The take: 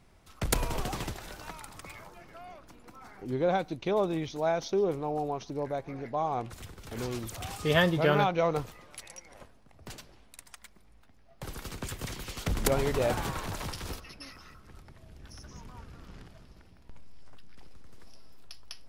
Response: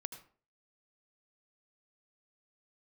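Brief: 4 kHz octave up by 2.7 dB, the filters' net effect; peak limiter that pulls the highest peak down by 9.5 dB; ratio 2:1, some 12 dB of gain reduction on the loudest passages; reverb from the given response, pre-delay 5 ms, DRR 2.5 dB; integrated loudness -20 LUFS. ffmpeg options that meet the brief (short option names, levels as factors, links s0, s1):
-filter_complex "[0:a]equalizer=f=4000:t=o:g=3.5,acompressor=threshold=0.00794:ratio=2,alimiter=level_in=2.37:limit=0.0631:level=0:latency=1,volume=0.422,asplit=2[s0][s1];[1:a]atrim=start_sample=2205,adelay=5[s2];[s1][s2]afir=irnorm=-1:irlink=0,volume=1[s3];[s0][s3]amix=inputs=2:normalize=0,volume=12.6"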